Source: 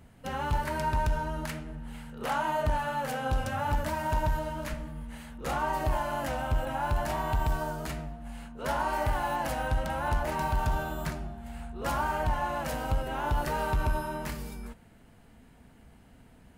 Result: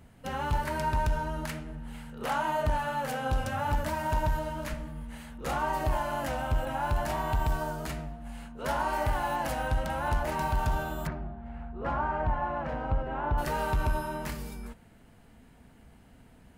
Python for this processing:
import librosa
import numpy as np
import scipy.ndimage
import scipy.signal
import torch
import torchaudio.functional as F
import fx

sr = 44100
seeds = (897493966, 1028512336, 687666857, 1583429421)

y = fx.lowpass(x, sr, hz=1700.0, slope=12, at=(11.06, 13.37), fade=0.02)